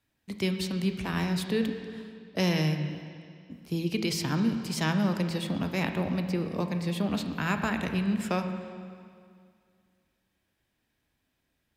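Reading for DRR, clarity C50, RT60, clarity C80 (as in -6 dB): 6.0 dB, 7.5 dB, 2.2 s, 8.5 dB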